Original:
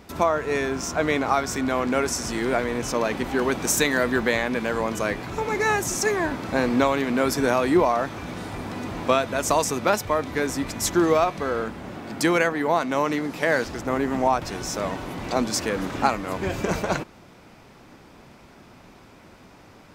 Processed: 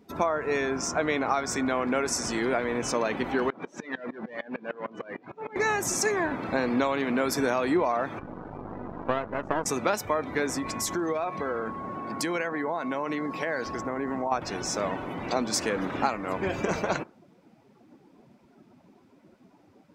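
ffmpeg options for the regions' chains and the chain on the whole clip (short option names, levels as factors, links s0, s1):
-filter_complex "[0:a]asettb=1/sr,asplit=3[s0][s1][s2];[s0]atrim=end=3.504[s3];[s1]atrim=start=3.5:end=5.56,asetpts=PTS-STARTPTS,afade=t=in:d=0.004:c=qsin,afade=t=out:st=2.056:d=0.004:c=qsin,volume=15,asoftclip=hard,volume=0.0668,highpass=150,lowpass=3900,aeval=exprs='val(0)*pow(10,-24*if(lt(mod(-6.6*n/s,1),2*abs(-6.6)/1000),1-mod(-6.6*n/s,1)/(2*abs(-6.6)/1000),(mod(-6.6*n/s,1)-2*abs(-6.6)/1000)/(1-2*abs(-6.6)/1000))/20)':c=same[s4];[s2]atrim=start=5.556[s5];[s3][s4]acrossfade=d=0.004:c1=hsin:c2=qsin[s6];[s6][s5]acrossfade=d=0.004:c1=qsin:c2=hsin,asettb=1/sr,asplit=3[s7][s8][s9];[s7]atrim=end=8.194[s10];[s8]atrim=start=8.19:end=9.66,asetpts=PTS-STARTPTS,afade=t=in:d=0.004:c=qsin,afade=t=out:st=1.466:d=0.004:c=qsin,lowpass=1600,aeval=exprs='val(0)+0.0126*(sin(2*PI*50*n/s)+sin(2*PI*2*50*n/s)/2+sin(2*PI*3*50*n/s)/3+sin(2*PI*4*50*n/s)/4+sin(2*PI*5*50*n/s)/5)':c=same,aeval=exprs='max(val(0),0)':c=same[s11];[s9]atrim=start=9.656[s12];[s10][s11]acrossfade=d=0.004:c1=hsin:c2=qsin[s13];[s13][s12]acrossfade=d=0.004:c1=qsin:c2=hsin,asettb=1/sr,asplit=3[s14][s15][s16];[s14]atrim=end=10.584[s17];[s15]atrim=start=10.58:end=14.32,asetpts=PTS-STARTPTS,afade=t=in:d=0.004:c=qsin,afade=t=out:st=3.736:d=0.004:c=qsin,bandreject=f=1200:w=15,aeval=exprs='val(0)+0.0158*sin(2*PI*1100*n/s)':c=same,acompressor=threshold=0.0562:ratio=4:attack=3.2:release=140:knee=1:detection=peak[s18];[s16]atrim=start=14.316[s19];[s17][s18]acrossfade=d=0.004:c1=hsin:c2=qsin[s20];[s20][s19]acrossfade=d=0.004:c1=qsin:c2=hsin,lowshelf=f=100:g=-11.5,afftdn=nr=17:nf=-42,acompressor=threshold=0.0708:ratio=2.5"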